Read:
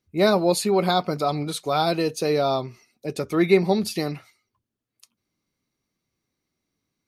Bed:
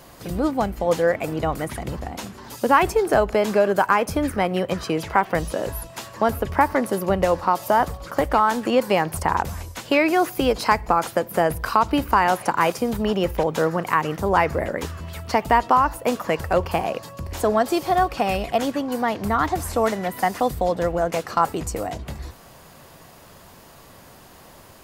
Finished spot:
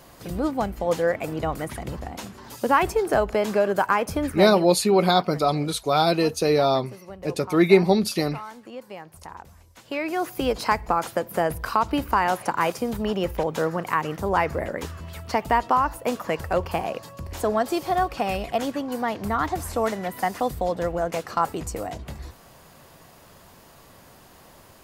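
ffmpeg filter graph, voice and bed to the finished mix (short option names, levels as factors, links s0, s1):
-filter_complex "[0:a]adelay=4200,volume=1.26[s0];[1:a]volume=4.47,afade=t=out:st=4.24:d=0.52:silence=0.149624,afade=t=in:st=9.68:d=0.84:silence=0.158489[s1];[s0][s1]amix=inputs=2:normalize=0"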